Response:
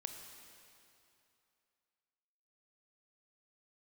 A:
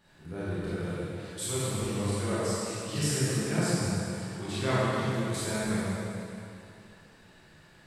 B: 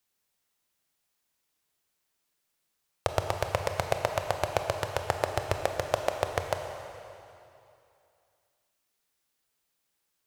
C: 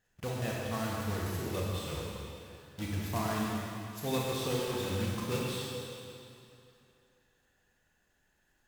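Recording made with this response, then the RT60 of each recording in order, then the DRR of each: B; 2.8 s, 2.8 s, 2.8 s; -11.0 dB, 4.5 dB, -4.0 dB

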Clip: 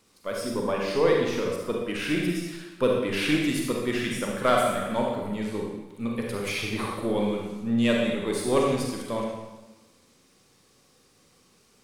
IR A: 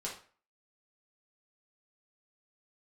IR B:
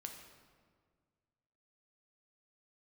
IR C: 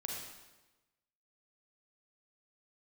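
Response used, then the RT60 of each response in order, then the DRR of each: C; 0.40 s, 1.8 s, 1.1 s; -4.5 dB, 3.0 dB, -1.5 dB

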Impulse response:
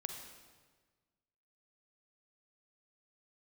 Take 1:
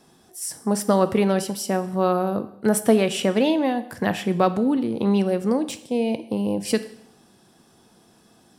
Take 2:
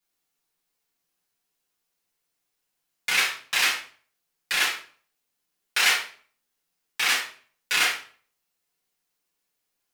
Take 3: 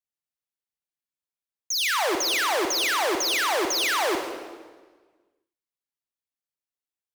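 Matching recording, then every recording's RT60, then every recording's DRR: 3; 0.75 s, 0.45 s, 1.4 s; 10.5 dB, -6.5 dB, 4.5 dB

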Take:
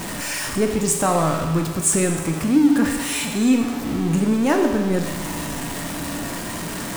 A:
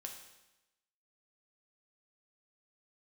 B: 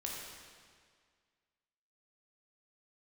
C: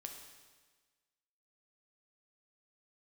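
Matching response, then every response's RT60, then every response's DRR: C; 1.0 s, 1.9 s, 1.4 s; 2.0 dB, -3.0 dB, 3.0 dB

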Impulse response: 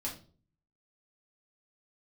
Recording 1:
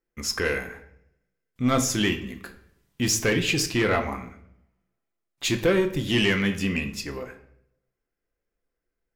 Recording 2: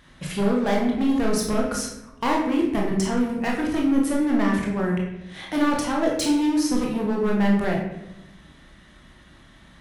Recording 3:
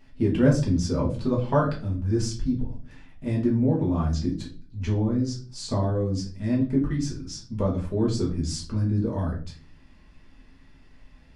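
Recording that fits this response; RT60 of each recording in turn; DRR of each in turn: 3; 0.70 s, 0.95 s, 0.40 s; 5.5 dB, -1.5 dB, -4.0 dB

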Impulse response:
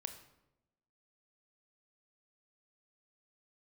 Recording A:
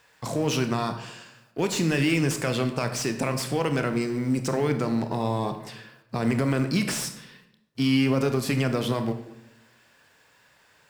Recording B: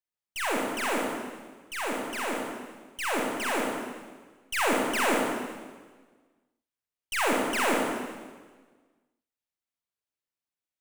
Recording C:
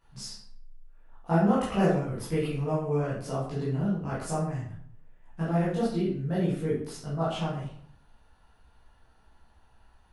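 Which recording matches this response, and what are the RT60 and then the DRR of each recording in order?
A; 0.90 s, 1.4 s, 0.60 s; 7.5 dB, -2.0 dB, -10.5 dB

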